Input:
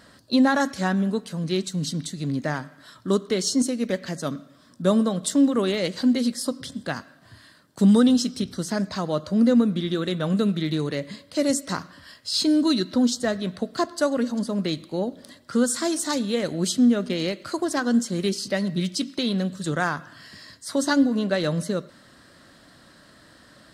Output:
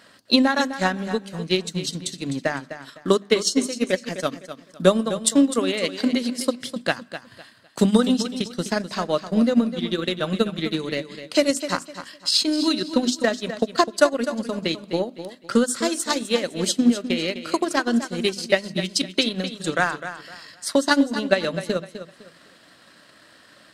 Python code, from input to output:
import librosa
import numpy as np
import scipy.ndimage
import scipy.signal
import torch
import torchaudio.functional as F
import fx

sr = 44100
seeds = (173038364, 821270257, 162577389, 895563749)

y = fx.highpass(x, sr, hz=250.0, slope=6)
y = fx.peak_eq(y, sr, hz=2600.0, db=6.5, octaves=0.6)
y = fx.hum_notches(y, sr, base_hz=50, count=7)
y = fx.transient(y, sr, attack_db=9, sustain_db=-7)
y = fx.echo_feedback(y, sr, ms=254, feedback_pct=28, wet_db=-11.5)